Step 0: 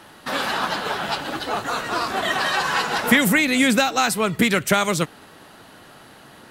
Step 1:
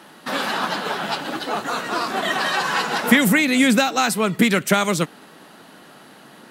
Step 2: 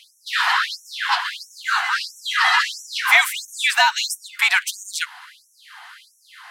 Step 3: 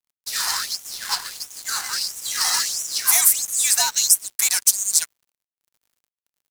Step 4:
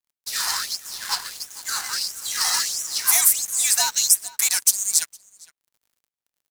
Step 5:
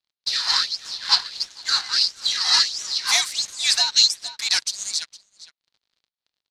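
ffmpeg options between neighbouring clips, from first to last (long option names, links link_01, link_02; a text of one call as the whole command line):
ffmpeg -i in.wav -af "lowshelf=frequency=120:width_type=q:width=1.5:gain=-14" out.wav
ffmpeg -i in.wav -filter_complex "[0:a]asplit=2[link_01][link_02];[link_02]highpass=frequency=720:poles=1,volume=12dB,asoftclip=type=tanh:threshold=-1.5dB[link_03];[link_01][link_03]amix=inputs=2:normalize=0,lowpass=frequency=2700:poles=1,volume=-6dB,afreqshift=150,afftfilt=real='re*gte(b*sr/1024,670*pow(5600/670,0.5+0.5*sin(2*PI*1.5*pts/sr)))':imag='im*gte(b*sr/1024,670*pow(5600/670,0.5+0.5*sin(2*PI*1.5*pts/sr)))':win_size=1024:overlap=0.75,volume=1.5dB" out.wav
ffmpeg -i in.wav -filter_complex "[0:a]acrossover=split=1300|2500|6000[link_01][link_02][link_03][link_04];[link_02]aeval=exprs='0.0668*(abs(mod(val(0)/0.0668+3,4)-2)-1)':channel_layout=same[link_05];[link_01][link_05][link_03][link_04]amix=inputs=4:normalize=0,aexciter=amount=7.1:drive=8.7:freq=4700,aeval=exprs='sgn(val(0))*max(abs(val(0))-0.0501,0)':channel_layout=same,volume=-7dB" out.wav
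ffmpeg -i in.wav -filter_complex "[0:a]asplit=2[link_01][link_02];[link_02]adelay=460.6,volume=-19dB,highshelf=frequency=4000:gain=-10.4[link_03];[link_01][link_03]amix=inputs=2:normalize=0,volume=-1dB" out.wav
ffmpeg -i in.wav -af "lowpass=frequency=4200:width_type=q:width=3.3,tremolo=f=3.5:d=0.63,volume=2.5dB" out.wav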